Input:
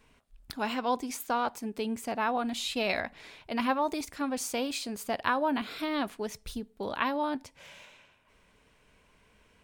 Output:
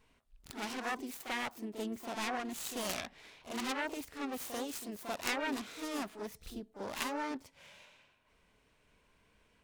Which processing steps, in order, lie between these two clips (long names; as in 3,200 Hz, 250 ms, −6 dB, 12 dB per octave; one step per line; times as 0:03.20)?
phase distortion by the signal itself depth 0.97 ms
backwards echo 41 ms −8.5 dB
pitch-shifted copies added +7 semitones −11 dB
level −7 dB